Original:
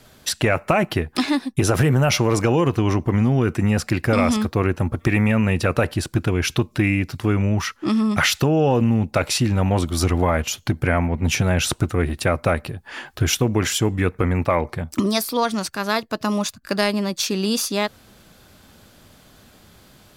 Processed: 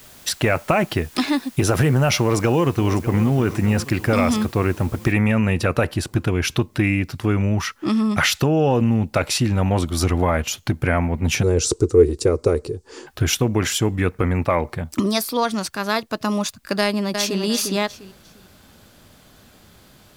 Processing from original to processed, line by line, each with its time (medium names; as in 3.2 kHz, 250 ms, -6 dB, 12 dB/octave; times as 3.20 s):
2.19–3.24 s: echo throw 600 ms, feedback 55%, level -13.5 dB
5.12 s: noise floor step -47 dB -68 dB
11.43–13.07 s: FFT filter 100 Hz 0 dB, 200 Hz -8 dB, 440 Hz +15 dB, 630 Hz -11 dB, 1.1 kHz -6 dB, 1.7 kHz -14 dB, 3.3 kHz -10 dB, 4.7 kHz +2 dB, 7.7 kHz +6 dB, 13 kHz -14 dB
16.79–17.41 s: echo throw 350 ms, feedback 25%, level -6 dB